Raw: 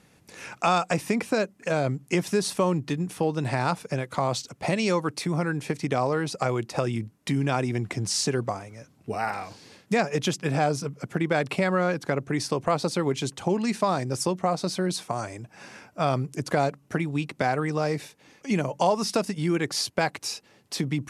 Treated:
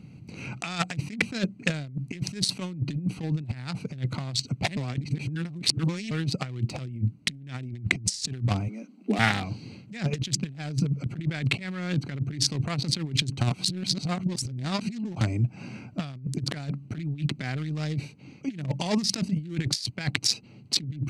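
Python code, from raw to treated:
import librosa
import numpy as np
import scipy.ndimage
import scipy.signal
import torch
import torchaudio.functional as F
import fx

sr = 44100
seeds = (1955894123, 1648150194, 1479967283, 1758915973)

y = fx.highpass(x, sr, hz=110.0, slope=12, at=(2.5, 3.19))
y = fx.steep_highpass(y, sr, hz=190.0, slope=96, at=(8.68, 9.19))
y = fx.edit(y, sr, fx.reverse_span(start_s=4.77, length_s=1.34),
    fx.reverse_span(start_s=13.41, length_s=1.8), tone=tone)
y = fx.wiener(y, sr, points=25)
y = fx.graphic_eq(y, sr, hz=(125, 250, 500, 1000, 2000, 4000, 8000), db=(11, 5, -8, -7, 8, 10, 7))
y = fx.over_compress(y, sr, threshold_db=-27.0, ratio=-0.5)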